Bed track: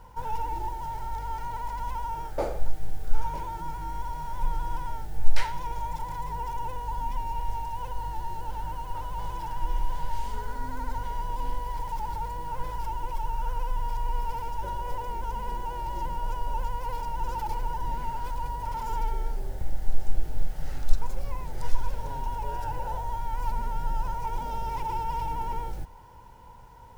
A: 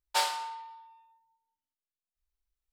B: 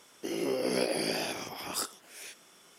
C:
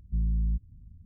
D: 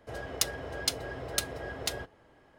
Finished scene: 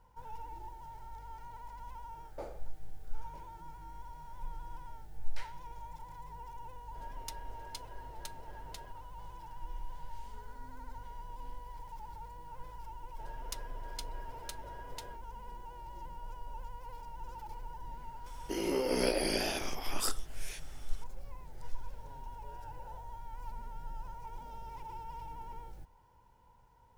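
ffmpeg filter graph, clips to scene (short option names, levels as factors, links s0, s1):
-filter_complex "[4:a]asplit=2[s0][s1];[0:a]volume=0.188[s2];[s0]atrim=end=2.58,asetpts=PTS-STARTPTS,volume=0.141,afade=t=in:d=0.004:c=hsin,afade=t=out:st=2.576:d=0.004:c=hsin,adelay=6870[s3];[s1]atrim=end=2.58,asetpts=PTS-STARTPTS,volume=0.178,afade=t=in:d=0.004:c=hsin,afade=t=out:st=2.576:d=0.004:c=hsin,adelay=13110[s4];[2:a]atrim=end=2.78,asetpts=PTS-STARTPTS,volume=0.891,afade=t=in:d=0.004:c=hsin,afade=t=out:st=2.776:d=0.004:c=hsin,adelay=18260[s5];[s2][s3][s4][s5]amix=inputs=4:normalize=0"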